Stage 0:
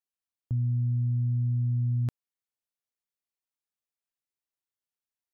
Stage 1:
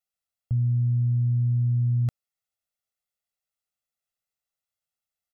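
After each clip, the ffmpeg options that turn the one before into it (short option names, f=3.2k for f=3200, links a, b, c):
-af "aecho=1:1:1.5:0.86"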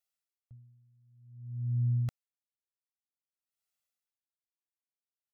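-af "tiltshelf=f=970:g=-3.5,aeval=exprs='val(0)*pow(10,-38*(0.5-0.5*cos(2*PI*0.53*n/s))/20)':c=same,volume=-1.5dB"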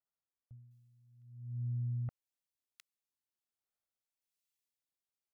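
-filter_complex "[0:a]acompressor=threshold=-33dB:ratio=6,acrossover=split=1700[a][b];[b]adelay=710[c];[a][c]amix=inputs=2:normalize=0,volume=-1.5dB"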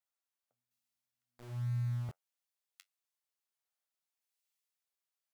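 -filter_complex "[0:a]flanger=delay=9.9:depth=2.1:regen=-54:speed=1.7:shape=triangular,acrossover=split=450[a][b];[a]aeval=exprs='val(0)*gte(abs(val(0)),0.00282)':c=same[c];[c][b]amix=inputs=2:normalize=0,volume=5.5dB"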